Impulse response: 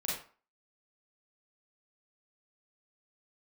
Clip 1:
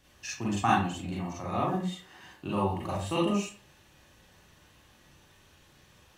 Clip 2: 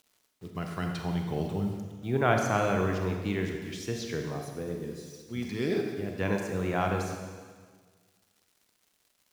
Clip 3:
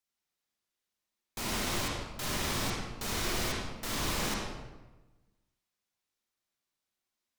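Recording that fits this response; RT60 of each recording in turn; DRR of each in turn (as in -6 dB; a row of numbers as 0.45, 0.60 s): 1; 0.40, 1.6, 1.2 s; -5.5, 2.5, -3.5 dB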